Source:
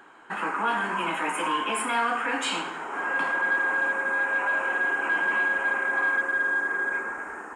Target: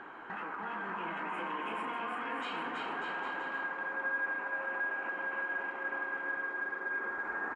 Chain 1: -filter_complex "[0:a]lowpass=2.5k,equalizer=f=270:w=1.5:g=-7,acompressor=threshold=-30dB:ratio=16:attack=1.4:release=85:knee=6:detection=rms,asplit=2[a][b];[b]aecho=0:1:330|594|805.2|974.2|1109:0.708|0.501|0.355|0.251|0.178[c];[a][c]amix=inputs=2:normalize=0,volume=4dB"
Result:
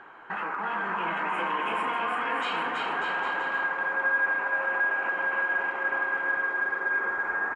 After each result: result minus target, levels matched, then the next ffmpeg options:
compressor: peak gain reduction -9.5 dB; 250 Hz band -5.0 dB
-filter_complex "[0:a]lowpass=2.5k,equalizer=f=270:w=1.5:g=-7,acompressor=threshold=-39.5dB:ratio=16:attack=1.4:release=85:knee=6:detection=rms,asplit=2[a][b];[b]aecho=0:1:330|594|805.2|974.2|1109:0.708|0.501|0.355|0.251|0.178[c];[a][c]amix=inputs=2:normalize=0,volume=4dB"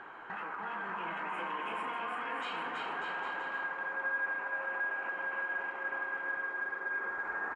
250 Hz band -5.0 dB
-filter_complex "[0:a]lowpass=2.5k,acompressor=threshold=-39.5dB:ratio=16:attack=1.4:release=85:knee=6:detection=rms,asplit=2[a][b];[b]aecho=0:1:330|594|805.2|974.2|1109:0.708|0.501|0.355|0.251|0.178[c];[a][c]amix=inputs=2:normalize=0,volume=4dB"

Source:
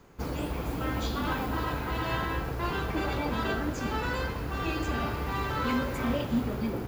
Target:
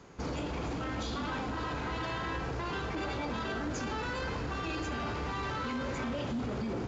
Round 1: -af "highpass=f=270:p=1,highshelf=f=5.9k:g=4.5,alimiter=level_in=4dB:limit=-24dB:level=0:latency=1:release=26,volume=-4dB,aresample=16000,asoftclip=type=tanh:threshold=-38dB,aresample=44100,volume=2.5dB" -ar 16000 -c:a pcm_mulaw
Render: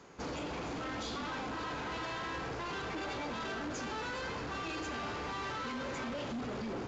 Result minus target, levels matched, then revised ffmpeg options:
soft clip: distortion +9 dB; 125 Hz band -5.0 dB
-af "highpass=f=69:p=1,highshelf=f=5.9k:g=4.5,alimiter=level_in=4dB:limit=-24dB:level=0:latency=1:release=26,volume=-4dB,aresample=16000,asoftclip=type=tanh:threshold=-30.5dB,aresample=44100,volume=2.5dB" -ar 16000 -c:a pcm_mulaw

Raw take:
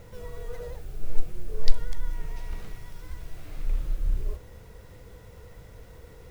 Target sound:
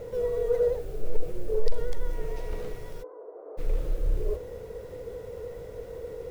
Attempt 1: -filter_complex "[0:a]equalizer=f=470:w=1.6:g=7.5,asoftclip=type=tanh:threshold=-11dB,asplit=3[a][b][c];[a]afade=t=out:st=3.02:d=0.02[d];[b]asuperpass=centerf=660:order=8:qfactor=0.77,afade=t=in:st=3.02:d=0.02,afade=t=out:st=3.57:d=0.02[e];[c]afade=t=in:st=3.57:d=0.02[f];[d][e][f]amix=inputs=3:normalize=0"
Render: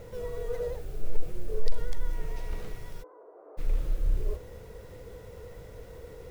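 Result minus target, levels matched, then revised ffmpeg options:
500 Hz band -4.0 dB
-filter_complex "[0:a]equalizer=f=470:w=1.6:g=17.5,asoftclip=type=tanh:threshold=-11dB,asplit=3[a][b][c];[a]afade=t=out:st=3.02:d=0.02[d];[b]asuperpass=centerf=660:order=8:qfactor=0.77,afade=t=in:st=3.02:d=0.02,afade=t=out:st=3.57:d=0.02[e];[c]afade=t=in:st=3.57:d=0.02[f];[d][e][f]amix=inputs=3:normalize=0"

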